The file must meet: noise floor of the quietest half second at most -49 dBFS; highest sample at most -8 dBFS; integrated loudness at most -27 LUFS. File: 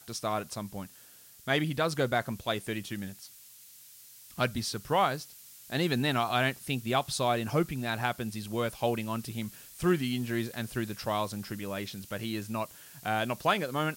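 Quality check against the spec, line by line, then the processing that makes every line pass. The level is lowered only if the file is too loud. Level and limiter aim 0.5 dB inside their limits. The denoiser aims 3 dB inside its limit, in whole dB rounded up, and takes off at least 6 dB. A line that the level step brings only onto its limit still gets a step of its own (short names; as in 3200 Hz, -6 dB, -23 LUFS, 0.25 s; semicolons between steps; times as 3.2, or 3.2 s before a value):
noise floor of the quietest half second -54 dBFS: OK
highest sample -14.0 dBFS: OK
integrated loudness -31.5 LUFS: OK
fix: none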